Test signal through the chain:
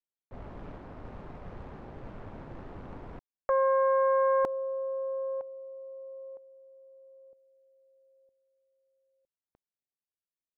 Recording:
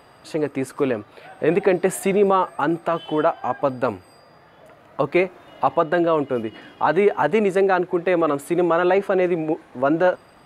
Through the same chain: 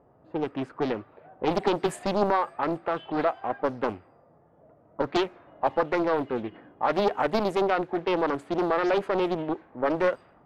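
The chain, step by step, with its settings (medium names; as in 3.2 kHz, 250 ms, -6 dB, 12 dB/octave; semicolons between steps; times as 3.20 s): level-controlled noise filter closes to 600 Hz, open at -14.5 dBFS; loudspeaker Doppler distortion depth 0.77 ms; trim -6 dB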